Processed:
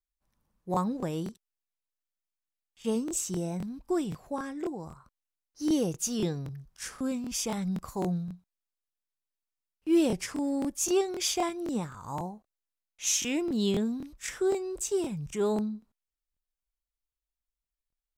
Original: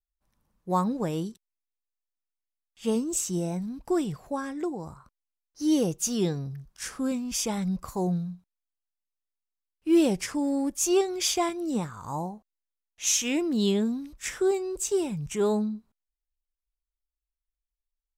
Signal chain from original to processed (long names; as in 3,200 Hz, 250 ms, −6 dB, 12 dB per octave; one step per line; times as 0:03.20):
regular buffer underruns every 0.26 s, samples 1,024, repeat, from 0:00.72
level −3 dB